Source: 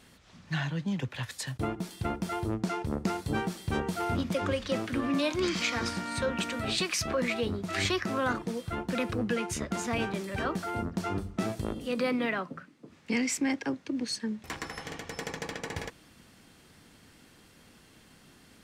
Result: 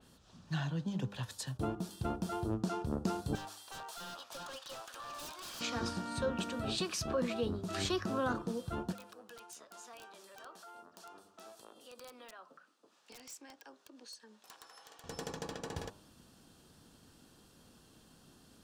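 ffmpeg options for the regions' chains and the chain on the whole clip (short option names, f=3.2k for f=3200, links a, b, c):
-filter_complex "[0:a]asettb=1/sr,asplit=3[a][b][c];[a]atrim=end=3.354[d];[b]atrim=start=3.35:end=5.61,asetpts=PTS-STARTPTS,afade=t=in:d=0.004:c=qsin,afade=t=out:st=2.256:d=0.004:c=qsin,highpass=f=740:w=0.5412,highpass=f=740:w=1.3066,aeval=exprs='0.0178*(abs(mod(val(0)/0.0178+3,4)-2)-1)':c=same[e];[c]atrim=start=5.606[f];[d][e]acrossfade=d=0.004:c1=hsin:c2=qsin[g];[g][f]acrossfade=d=0.004:c1=qsin:c2=hsin,asettb=1/sr,asplit=3[h][i][j];[h]atrim=end=8.924[k];[i]atrim=start=8.92:end=15.04,asetpts=PTS-STARTPTS,afade=t=in:d=0.004:c=qsin,afade=t=out:st=6.116:d=0.004:c=qsin,highpass=720,acompressor=threshold=-52dB:ratio=2:attack=3.2:release=140:knee=1:detection=peak,aeval=exprs='(mod(59.6*val(0)+1,2)-1)/59.6':c=same[l];[j]atrim=start=15.036[m];[k][l]acrossfade=d=0.004:c1=hsin:c2=qsin[n];[n][m]acrossfade=d=0.004:c1=qsin:c2=hsin,equalizer=f=2.1k:w=2.8:g=-14.5,bandreject=f=100.8:t=h:w=4,bandreject=f=201.6:t=h:w=4,bandreject=f=302.4:t=h:w=4,bandreject=f=403.2:t=h:w=4,bandreject=f=504:t=h:w=4,bandreject=f=604.8:t=h:w=4,bandreject=f=705.6:t=h:w=4,bandreject=f=806.4:t=h:w=4,bandreject=f=907.2:t=h:w=4,bandreject=f=1.008k:t=h:w=4,bandreject=f=1.1088k:t=h:w=4,bandreject=f=1.2096k:t=h:w=4,bandreject=f=1.3104k:t=h:w=4,bandreject=f=1.4112k:t=h:w=4,bandreject=f=1.512k:t=h:w=4,adynamicequalizer=threshold=0.00447:dfrequency=3900:dqfactor=0.7:tfrequency=3900:tqfactor=0.7:attack=5:release=100:ratio=0.375:range=2:mode=cutabove:tftype=highshelf,volume=-3.5dB"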